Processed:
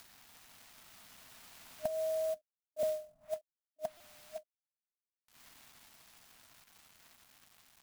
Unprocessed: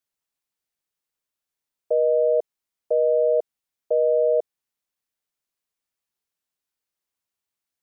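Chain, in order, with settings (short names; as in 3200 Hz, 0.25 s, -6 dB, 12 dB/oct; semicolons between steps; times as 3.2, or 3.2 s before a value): Doppler pass-by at 2.91, 9 m/s, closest 1.6 m; upward compressor, threshold -32 dBFS; small resonant body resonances 340/550 Hz, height 12 dB, ringing for 45 ms; bit-crush 10-bit; FFT band-reject 290–620 Hz; treble ducked by the level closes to 410 Hz, closed at -32 dBFS; compressor 6:1, threshold -42 dBFS, peak gain reduction 14.5 dB; stuck buffer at 3.97/6.64, samples 128, times 10; clock jitter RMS 0.034 ms; gain +9.5 dB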